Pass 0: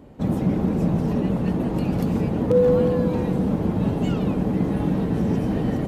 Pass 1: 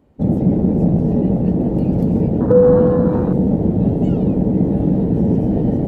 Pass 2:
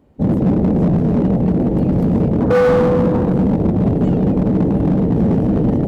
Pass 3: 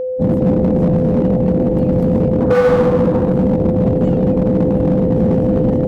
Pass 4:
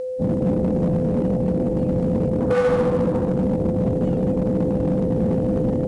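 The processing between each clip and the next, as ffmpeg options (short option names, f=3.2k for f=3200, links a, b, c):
-af "afwtdn=0.0398,volume=6.5dB"
-af "asoftclip=type=hard:threshold=-12dB,volume=2dB"
-af "aeval=exprs='val(0)+0.126*sin(2*PI*510*n/s)':c=same"
-af "volume=-6.5dB" -ar 22050 -c:a adpcm_ima_wav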